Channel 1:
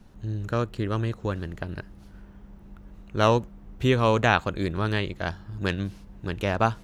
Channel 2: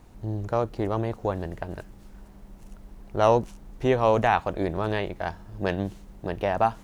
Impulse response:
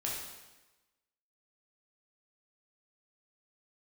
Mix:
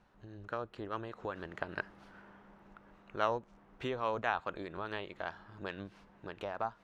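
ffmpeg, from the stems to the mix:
-filter_complex "[0:a]dynaudnorm=f=460:g=5:m=11.5dB,bandpass=f=1.3k:t=q:w=0.81:csg=0,volume=-4dB[a];[1:a]lowpass=4.7k,tremolo=f=4.8:d=0.74,volume=-18dB,asplit=2[b][c];[c]apad=whole_len=301214[d];[a][d]sidechaincompress=threshold=-55dB:ratio=6:attack=34:release=137[e];[e][b]amix=inputs=2:normalize=0"

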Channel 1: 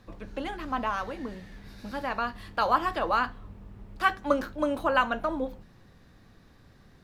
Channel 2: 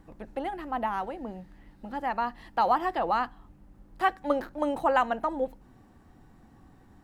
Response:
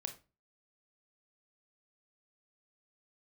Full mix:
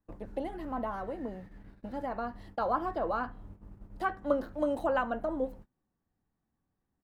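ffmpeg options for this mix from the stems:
-filter_complex "[0:a]lowpass=1.5k,volume=-4.5dB[a];[1:a]acrossover=split=490|1200[b][c][d];[b]acompressor=threshold=-44dB:ratio=4[e];[c]acompressor=threshold=-36dB:ratio=4[f];[d]acompressor=threshold=-43dB:ratio=4[g];[e][f][g]amix=inputs=3:normalize=0,adelay=3,volume=-3dB[h];[a][h]amix=inputs=2:normalize=0,agate=range=-26dB:threshold=-47dB:ratio=16:detection=peak"

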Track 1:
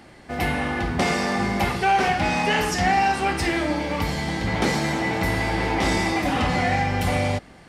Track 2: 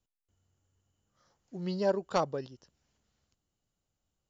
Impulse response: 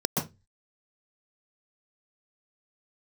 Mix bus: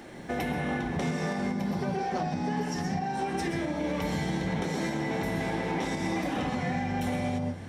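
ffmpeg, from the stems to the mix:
-filter_complex "[0:a]acompressor=threshold=-26dB:ratio=6,volume=-1dB,asplit=2[a][b];[b]volume=-13dB[c];[1:a]acompressor=mode=upward:threshold=-36dB:ratio=2.5,volume=-9.5dB,asplit=2[d][e];[e]apad=whole_len=338883[f];[a][f]sidechaincompress=threshold=-56dB:ratio=8:attack=16:release=1020[g];[2:a]atrim=start_sample=2205[h];[c][h]afir=irnorm=-1:irlink=0[i];[g][d][i]amix=inputs=3:normalize=0,alimiter=limit=-21dB:level=0:latency=1:release=265"

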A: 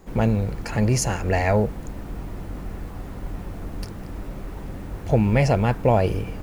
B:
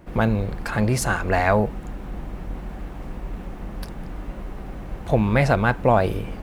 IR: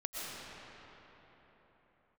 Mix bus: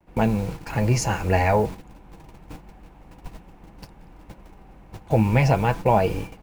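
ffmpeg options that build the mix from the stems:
-filter_complex "[0:a]lowpass=7.6k,flanger=delay=3.3:depth=8.6:regen=61:speed=0.32:shape=triangular,acrusher=bits=7:mix=0:aa=0.000001,volume=3dB[a];[1:a]adelay=6.3,volume=-13.5dB,asplit=2[b][c];[c]apad=whole_len=283499[d];[a][d]sidechaingate=range=-33dB:threshold=-41dB:ratio=16:detection=peak[e];[e][b]amix=inputs=2:normalize=0,superequalizer=9b=1.78:12b=1.41"

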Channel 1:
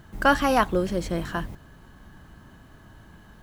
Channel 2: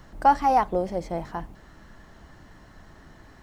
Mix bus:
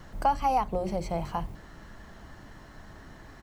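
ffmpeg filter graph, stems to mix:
-filter_complex "[0:a]acompressor=threshold=-24dB:ratio=6,volume=-9.5dB[a];[1:a]bandreject=f=60:t=h:w=6,bandreject=f=120:t=h:w=6,bandreject=f=180:t=h:w=6,bandreject=f=240:t=h:w=6,bandreject=f=300:t=h:w=6,bandreject=f=360:t=h:w=6,acrossover=split=170[b][c];[c]acompressor=threshold=-28dB:ratio=2.5[d];[b][d]amix=inputs=2:normalize=0,volume=-1,adelay=1.2,volume=1.5dB[e];[a][e]amix=inputs=2:normalize=0"

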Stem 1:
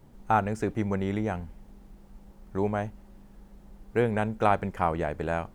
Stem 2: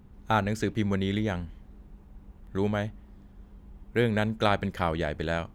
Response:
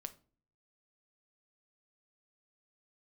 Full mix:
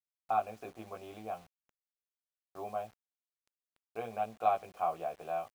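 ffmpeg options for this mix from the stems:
-filter_complex "[0:a]volume=-2dB,asplit=2[a][b];[b]volume=-16dB[c];[1:a]lowshelf=f=170:g=10.5,adelay=17,volume=-4.5dB[d];[2:a]atrim=start_sample=2205[e];[c][e]afir=irnorm=-1:irlink=0[f];[a][d][f]amix=inputs=3:normalize=0,asplit=3[g][h][i];[g]bandpass=f=730:t=q:w=8,volume=0dB[j];[h]bandpass=f=1.09k:t=q:w=8,volume=-6dB[k];[i]bandpass=f=2.44k:t=q:w=8,volume=-9dB[l];[j][k][l]amix=inputs=3:normalize=0,acrusher=bits=9:mix=0:aa=0.000001"

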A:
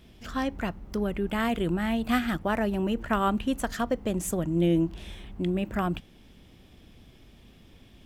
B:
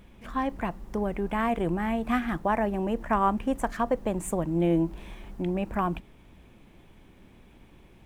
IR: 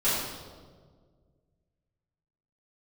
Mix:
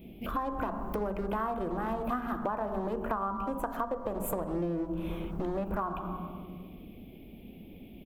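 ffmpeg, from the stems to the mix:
-filter_complex "[0:a]firequalizer=gain_entry='entry(130,0);entry(180,10);entry(770,3);entry(1300,-30);entry(2300,4);entry(6400,-30);entry(12000,9)':delay=0.05:min_phase=1,asoftclip=type=hard:threshold=-23.5dB,volume=0dB[a];[1:a]agate=range=-24dB:threshold=-42dB:ratio=16:detection=peak,highshelf=f=1.7k:t=q:w=3:g=-8,adelay=2.6,volume=1dB,asplit=3[b][c][d];[c]volume=-18.5dB[e];[d]apad=whole_len=359486[f];[a][f]sidechaincompress=threshold=-31dB:ratio=5:attack=27:release=232[g];[2:a]atrim=start_sample=2205[h];[e][h]afir=irnorm=-1:irlink=0[i];[g][b][i]amix=inputs=3:normalize=0,acompressor=threshold=-29dB:ratio=12"

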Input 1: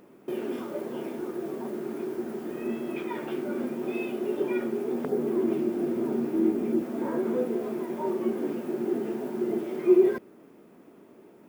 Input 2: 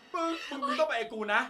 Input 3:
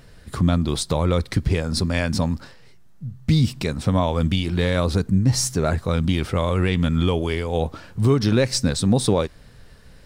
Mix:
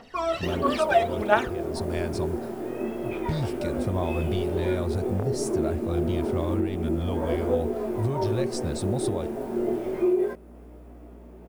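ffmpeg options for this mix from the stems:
-filter_complex "[0:a]aeval=exprs='val(0)+0.00562*(sin(2*PI*60*n/s)+sin(2*PI*2*60*n/s)/2+sin(2*PI*3*60*n/s)/3+sin(2*PI*4*60*n/s)/4+sin(2*PI*5*60*n/s)/5)':c=same,flanger=delay=20:depth=7.1:speed=0.28,adelay=150,volume=2.5dB[a];[1:a]aphaser=in_gain=1:out_gain=1:delay=1.6:decay=0.72:speed=1.5:type=triangular,volume=-1dB,asplit=2[b][c];[2:a]asubboost=boost=3.5:cutoff=130,volume=-13dB[d];[c]apad=whole_len=443206[e];[d][e]sidechaincompress=threshold=-30dB:ratio=8:attack=16:release=580[f];[a][f]amix=inputs=2:normalize=0,adynamicequalizer=threshold=0.00126:dfrequency=9500:dqfactor=1.6:tfrequency=9500:tqfactor=1.6:attack=5:release=100:ratio=0.375:range=3:mode=boostabove:tftype=bell,alimiter=limit=-17.5dB:level=0:latency=1:release=465,volume=0dB[g];[b][g]amix=inputs=2:normalize=0,equalizer=f=650:t=o:w=1:g=8"

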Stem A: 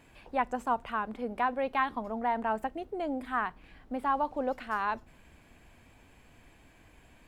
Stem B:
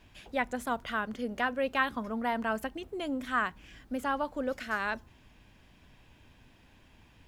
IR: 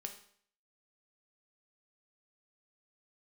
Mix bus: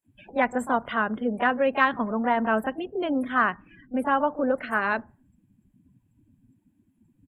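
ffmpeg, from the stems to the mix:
-filter_complex "[0:a]aexciter=amount=14.9:drive=3.1:freq=6.7k,volume=-11dB[a];[1:a]highpass=130,aemphasis=mode=reproduction:type=75fm,volume=-1,adelay=26,volume=1.5dB,asplit=2[b][c];[c]volume=-18dB[d];[2:a]atrim=start_sample=2205[e];[d][e]afir=irnorm=-1:irlink=0[f];[a][b][f]amix=inputs=3:normalize=0,afftdn=nr=31:nf=-48,acontrast=35"

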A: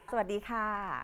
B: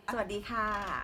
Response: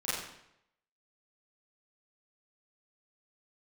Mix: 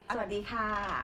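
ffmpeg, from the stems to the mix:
-filter_complex "[0:a]volume=-9dB,asplit=2[a][b];[1:a]lowpass=5.9k,adelay=16,volume=2dB[c];[b]apad=whole_len=46172[d];[c][d]sidechaincompress=threshold=-42dB:ratio=8:attack=46:release=142[e];[a][e]amix=inputs=2:normalize=0"

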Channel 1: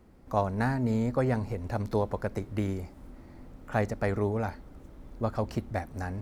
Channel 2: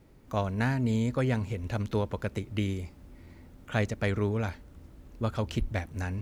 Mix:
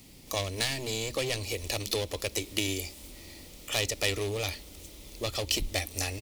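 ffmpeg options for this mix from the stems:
-filter_complex "[0:a]highpass=150,acompressor=threshold=-30dB:ratio=6,volume=-2dB[a];[1:a]lowpass=3.3k,asoftclip=type=hard:threshold=-28dB,equalizer=f=280:w=6.9:g=8,adelay=1.5,volume=-6.5dB[b];[a][b]amix=inputs=2:normalize=0,aexciter=amount=13.9:drive=4.1:freq=2.3k,lowshelf=f=220:g=8"

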